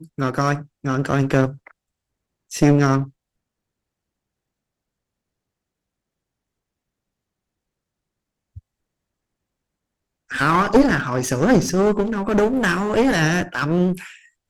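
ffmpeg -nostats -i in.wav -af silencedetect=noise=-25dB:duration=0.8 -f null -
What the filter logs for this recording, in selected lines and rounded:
silence_start: 1.49
silence_end: 2.52 | silence_duration: 1.03
silence_start: 3.04
silence_end: 10.31 | silence_duration: 7.28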